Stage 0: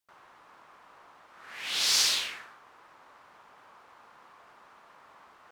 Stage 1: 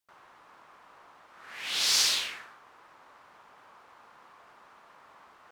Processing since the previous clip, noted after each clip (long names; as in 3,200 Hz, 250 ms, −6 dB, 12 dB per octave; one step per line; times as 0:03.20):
no processing that can be heard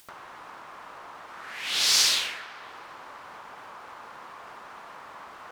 upward compression, threshold −39 dBFS
delay with a band-pass on its return 255 ms, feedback 47%, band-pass 940 Hz, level −9 dB
level +3.5 dB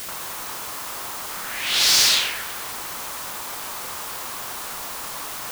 in parallel at −5 dB: wrap-around overflow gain 16 dB
on the sum: bit-depth reduction 6 bits, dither triangular
level +2.5 dB